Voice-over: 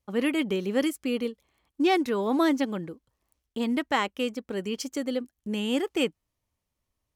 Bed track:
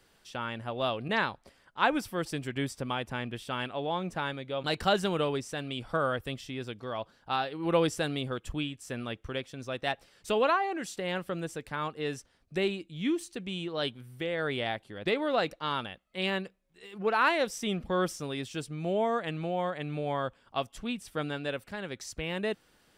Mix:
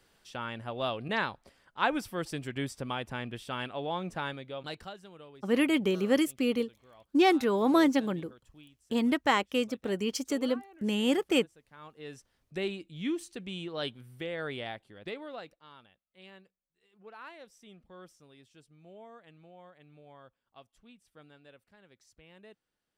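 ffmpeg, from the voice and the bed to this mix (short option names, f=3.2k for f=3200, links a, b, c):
-filter_complex "[0:a]adelay=5350,volume=0dB[a];[1:a]volume=16.5dB,afade=t=out:st=4.28:d=0.66:silence=0.105925,afade=t=in:st=11.69:d=1.11:silence=0.11885,afade=t=out:st=14.12:d=1.49:silence=0.112202[b];[a][b]amix=inputs=2:normalize=0"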